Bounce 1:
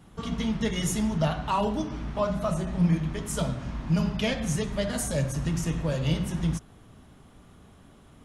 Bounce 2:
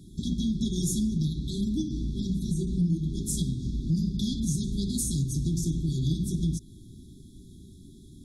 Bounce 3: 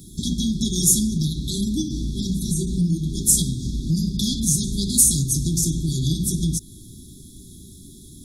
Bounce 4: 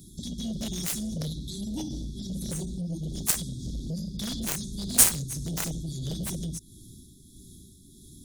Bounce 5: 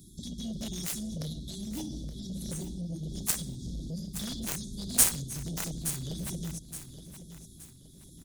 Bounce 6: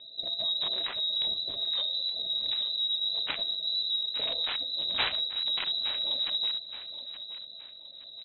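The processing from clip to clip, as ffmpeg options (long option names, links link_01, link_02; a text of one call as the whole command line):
ffmpeg -i in.wav -af "afftfilt=real='re*(1-between(b*sr/4096,400,3300))':imag='im*(1-between(b*sr/4096,400,3300))':win_size=4096:overlap=0.75,acompressor=threshold=-31dB:ratio=2.5,volume=5dB" out.wav
ffmpeg -i in.wav -af "crystalizer=i=3:c=0,volume=4.5dB" out.wav
ffmpeg -i in.wav -af "tremolo=f=1.6:d=0.43,aeval=exprs='0.891*(cos(1*acos(clip(val(0)/0.891,-1,1)))-cos(1*PI/2))+0.2*(cos(7*acos(clip(val(0)/0.891,-1,1)))-cos(7*PI/2))':channel_layout=same,volume=-1dB" out.wav
ffmpeg -i in.wav -af "aecho=1:1:871|1742|2613|3484:0.251|0.0879|0.0308|0.0108,volume=-4dB" out.wav
ffmpeg -i in.wav -af "lowpass=frequency=3400:width_type=q:width=0.5098,lowpass=frequency=3400:width_type=q:width=0.6013,lowpass=frequency=3400:width_type=q:width=0.9,lowpass=frequency=3400:width_type=q:width=2.563,afreqshift=-4000,volume=6.5dB" out.wav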